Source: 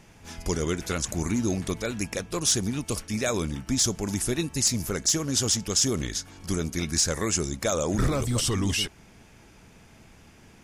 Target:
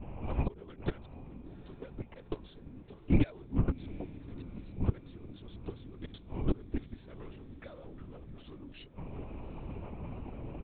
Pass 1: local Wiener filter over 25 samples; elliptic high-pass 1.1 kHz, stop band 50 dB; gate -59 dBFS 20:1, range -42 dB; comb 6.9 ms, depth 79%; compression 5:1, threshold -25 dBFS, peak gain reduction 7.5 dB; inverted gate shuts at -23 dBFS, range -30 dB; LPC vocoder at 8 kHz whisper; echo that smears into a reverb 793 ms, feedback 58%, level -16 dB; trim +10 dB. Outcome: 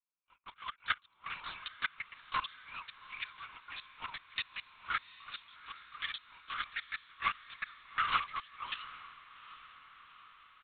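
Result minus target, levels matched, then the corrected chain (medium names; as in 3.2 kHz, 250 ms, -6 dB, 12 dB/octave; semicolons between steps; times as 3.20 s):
1 kHz band +13.0 dB
local Wiener filter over 25 samples; gate -59 dBFS 20:1, range -42 dB; comb 6.9 ms, depth 79%; compression 5:1, threshold -25 dBFS, peak gain reduction 8 dB; inverted gate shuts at -23 dBFS, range -30 dB; LPC vocoder at 8 kHz whisper; echo that smears into a reverb 793 ms, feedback 58%, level -16 dB; trim +10 dB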